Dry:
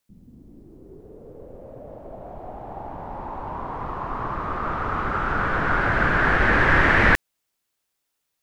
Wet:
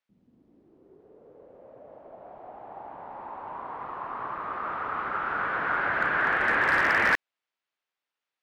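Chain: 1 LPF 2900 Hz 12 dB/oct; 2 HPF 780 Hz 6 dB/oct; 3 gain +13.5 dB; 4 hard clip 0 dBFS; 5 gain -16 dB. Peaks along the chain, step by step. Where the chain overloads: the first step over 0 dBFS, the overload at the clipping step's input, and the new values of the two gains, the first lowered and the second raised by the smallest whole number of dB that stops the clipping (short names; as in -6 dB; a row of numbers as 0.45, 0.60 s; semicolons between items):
-5.0, -7.5, +6.0, 0.0, -16.0 dBFS; step 3, 6.0 dB; step 3 +7.5 dB, step 5 -10 dB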